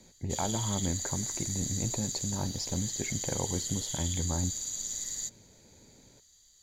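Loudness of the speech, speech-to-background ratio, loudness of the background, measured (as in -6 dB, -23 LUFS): -35.5 LUFS, -1.5 dB, -34.0 LUFS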